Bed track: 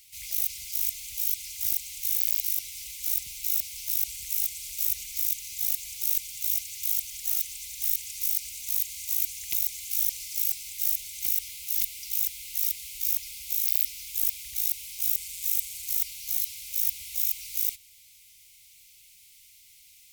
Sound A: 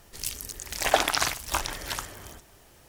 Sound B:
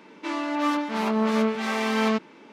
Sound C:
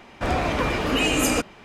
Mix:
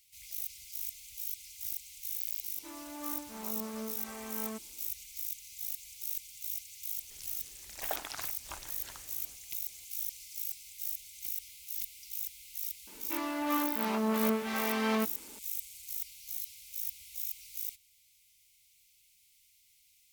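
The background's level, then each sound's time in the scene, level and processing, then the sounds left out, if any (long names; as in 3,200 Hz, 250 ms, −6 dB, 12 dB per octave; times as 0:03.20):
bed track −11 dB
0:02.40: mix in B −17.5 dB, fades 0.05 s + high-shelf EQ 2,300 Hz −9.5 dB
0:06.97: mix in A −17 dB
0:12.87: mix in B −7 dB
not used: C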